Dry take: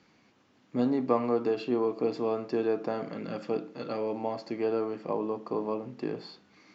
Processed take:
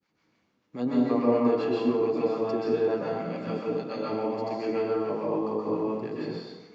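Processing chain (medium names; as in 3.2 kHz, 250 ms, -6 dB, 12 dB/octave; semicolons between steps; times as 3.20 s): expander -56 dBFS; harmonic tremolo 7 Hz, depth 70%, crossover 620 Hz; plate-style reverb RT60 1.1 s, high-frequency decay 0.75×, pre-delay 115 ms, DRR -5.5 dB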